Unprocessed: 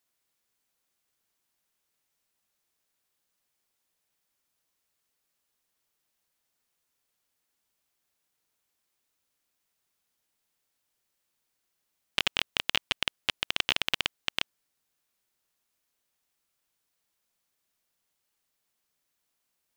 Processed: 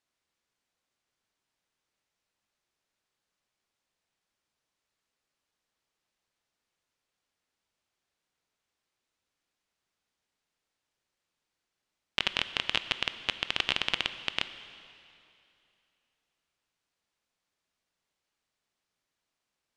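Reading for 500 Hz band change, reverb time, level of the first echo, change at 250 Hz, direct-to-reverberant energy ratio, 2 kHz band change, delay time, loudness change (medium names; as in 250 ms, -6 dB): 0.0 dB, 2.7 s, no echo, +0.5 dB, 11.0 dB, -0.5 dB, no echo, -1.0 dB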